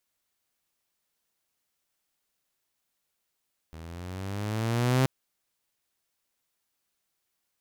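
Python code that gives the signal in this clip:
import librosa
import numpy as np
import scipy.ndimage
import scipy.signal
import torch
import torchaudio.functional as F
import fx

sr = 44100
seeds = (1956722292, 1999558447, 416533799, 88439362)

y = fx.riser_tone(sr, length_s=1.33, level_db=-17.0, wave='saw', hz=79.0, rise_st=9.0, swell_db=22.0)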